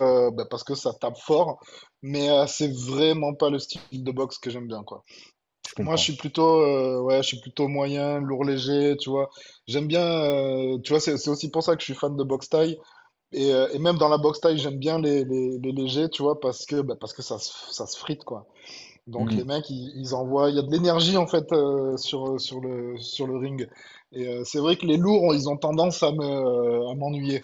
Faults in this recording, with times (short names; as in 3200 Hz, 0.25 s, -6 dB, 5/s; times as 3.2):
10.3 pop -14 dBFS